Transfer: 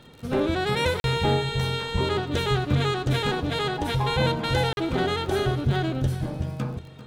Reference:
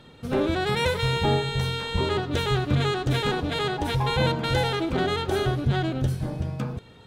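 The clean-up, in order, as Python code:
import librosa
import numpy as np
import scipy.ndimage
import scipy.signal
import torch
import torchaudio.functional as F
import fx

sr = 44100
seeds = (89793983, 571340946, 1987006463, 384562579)

y = fx.fix_declick_ar(x, sr, threshold=6.5)
y = fx.fix_interpolate(y, sr, at_s=(1.0, 4.73), length_ms=41.0)
y = fx.fix_echo_inverse(y, sr, delay_ms=393, level_db=-15.5)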